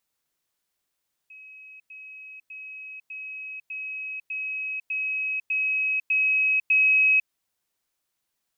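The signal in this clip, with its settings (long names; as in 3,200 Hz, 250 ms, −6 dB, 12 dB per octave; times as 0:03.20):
level staircase 2,550 Hz −43 dBFS, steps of 3 dB, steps 10, 0.50 s 0.10 s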